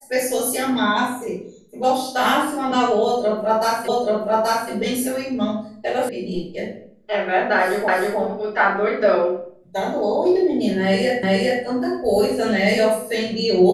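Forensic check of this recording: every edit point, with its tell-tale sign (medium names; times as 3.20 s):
3.88 s: repeat of the last 0.83 s
6.09 s: sound stops dead
7.88 s: repeat of the last 0.31 s
11.23 s: repeat of the last 0.41 s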